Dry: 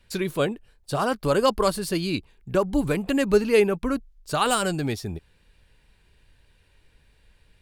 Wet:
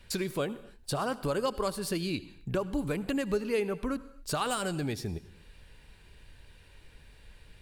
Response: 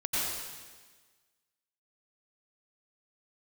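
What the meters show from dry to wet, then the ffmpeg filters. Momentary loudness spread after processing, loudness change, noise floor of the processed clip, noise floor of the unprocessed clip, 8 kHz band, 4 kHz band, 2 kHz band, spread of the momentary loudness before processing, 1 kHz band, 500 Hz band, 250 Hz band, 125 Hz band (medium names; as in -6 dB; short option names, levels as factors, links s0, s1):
7 LU, -8.5 dB, -56 dBFS, -62 dBFS, -6.0 dB, -7.0 dB, -8.5 dB, 11 LU, -9.0 dB, -9.5 dB, -7.5 dB, -6.0 dB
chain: -filter_complex "[0:a]acompressor=threshold=0.01:ratio=2.5,asplit=2[s0][s1];[1:a]atrim=start_sample=2205,afade=t=out:st=0.42:d=0.01,atrim=end_sample=18963,asetrate=57330,aresample=44100[s2];[s1][s2]afir=irnorm=-1:irlink=0,volume=0.0891[s3];[s0][s3]amix=inputs=2:normalize=0,volume=1.68"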